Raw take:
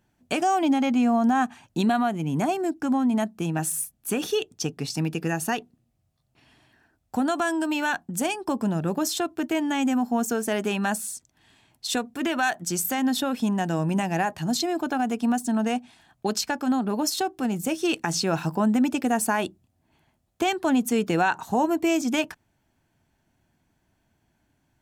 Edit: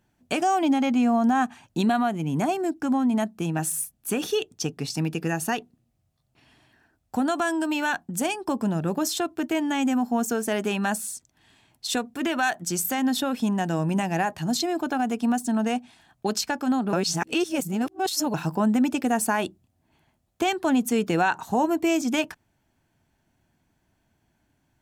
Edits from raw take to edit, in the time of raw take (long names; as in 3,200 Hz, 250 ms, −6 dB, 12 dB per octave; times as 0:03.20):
0:16.93–0:18.34: reverse